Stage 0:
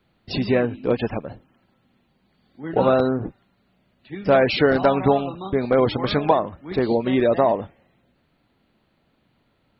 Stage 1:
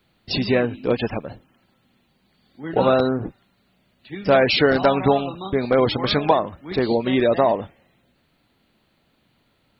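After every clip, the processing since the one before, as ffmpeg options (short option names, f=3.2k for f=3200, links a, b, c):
-af "highshelf=f=3.1k:g=9.5"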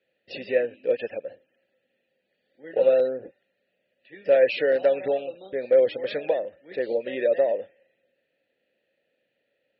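-filter_complex "[0:a]asplit=3[a][b][c];[a]bandpass=f=530:t=q:w=8,volume=0dB[d];[b]bandpass=f=1.84k:t=q:w=8,volume=-6dB[e];[c]bandpass=f=2.48k:t=q:w=8,volume=-9dB[f];[d][e][f]amix=inputs=3:normalize=0,volume=3dB"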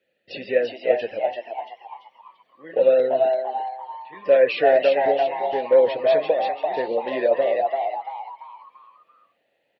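-filter_complex "[0:a]flanger=delay=3.2:depth=3.6:regen=-70:speed=1.4:shape=sinusoidal,asplit=6[a][b][c][d][e][f];[b]adelay=340,afreqshift=130,volume=-3.5dB[g];[c]adelay=680,afreqshift=260,volume=-11.9dB[h];[d]adelay=1020,afreqshift=390,volume=-20.3dB[i];[e]adelay=1360,afreqshift=520,volume=-28.7dB[j];[f]adelay=1700,afreqshift=650,volume=-37.1dB[k];[a][g][h][i][j][k]amix=inputs=6:normalize=0,volume=6.5dB"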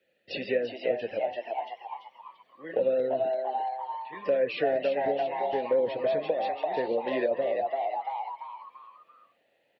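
-filter_complex "[0:a]acrossover=split=300[a][b];[b]acompressor=threshold=-27dB:ratio=5[c];[a][c]amix=inputs=2:normalize=0"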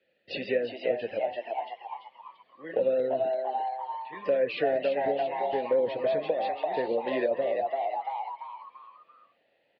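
-af "aresample=11025,aresample=44100"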